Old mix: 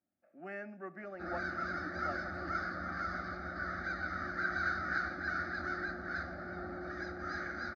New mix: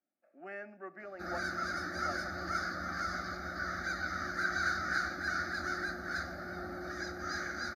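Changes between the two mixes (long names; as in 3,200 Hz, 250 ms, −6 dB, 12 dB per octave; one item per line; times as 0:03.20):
speech: add high-pass filter 280 Hz 12 dB per octave
background: remove high-frequency loss of the air 240 metres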